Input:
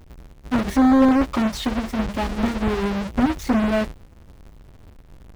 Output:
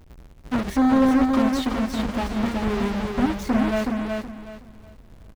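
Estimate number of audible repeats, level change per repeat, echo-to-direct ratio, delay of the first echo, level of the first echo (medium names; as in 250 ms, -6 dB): 3, -11.5 dB, -3.5 dB, 372 ms, -4.0 dB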